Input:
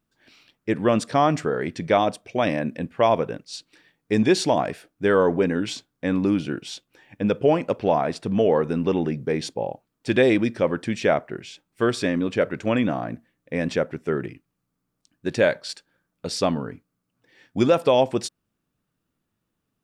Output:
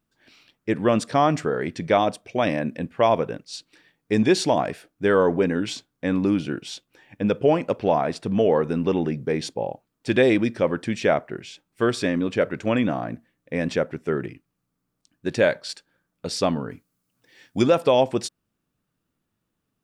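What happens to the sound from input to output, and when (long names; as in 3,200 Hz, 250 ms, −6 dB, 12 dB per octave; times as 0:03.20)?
0:16.70–0:17.62: high-shelf EQ 3,600 Hz +10 dB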